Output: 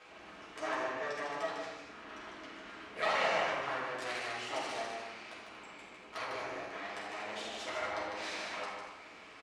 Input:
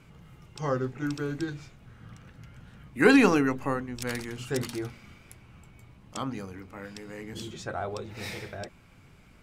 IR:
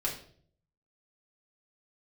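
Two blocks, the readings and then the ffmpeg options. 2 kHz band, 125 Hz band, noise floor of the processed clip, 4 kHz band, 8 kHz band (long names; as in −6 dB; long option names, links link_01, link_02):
−5.0 dB, −22.5 dB, −53 dBFS, −1.0 dB, −7.0 dB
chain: -filter_complex "[0:a]aeval=exprs='abs(val(0))':channel_layout=same,acrossover=split=400 6600:gain=0.0794 1 0.1[link_01][link_02][link_03];[link_01][link_02][link_03]amix=inputs=3:normalize=0,acompressor=threshold=-52dB:ratio=2,highpass=54,aecho=1:1:75.8|151.6|236.2:0.282|0.562|0.282[link_04];[1:a]atrim=start_sample=2205,asetrate=22932,aresample=44100[link_05];[link_04][link_05]afir=irnorm=-1:irlink=0"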